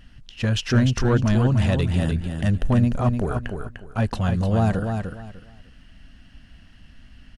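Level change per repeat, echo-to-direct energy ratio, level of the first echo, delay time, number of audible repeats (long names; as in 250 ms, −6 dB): −13.0 dB, −6.0 dB, −6.0 dB, 299 ms, 3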